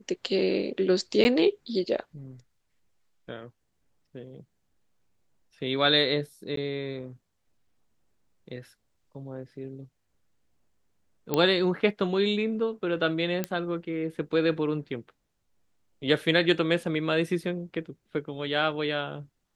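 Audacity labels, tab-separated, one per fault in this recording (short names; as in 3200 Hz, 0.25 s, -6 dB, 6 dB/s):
1.240000	1.250000	gap 10 ms
6.560000	6.570000	gap 13 ms
11.340000	11.340000	pop -11 dBFS
13.440000	13.440000	pop -13 dBFS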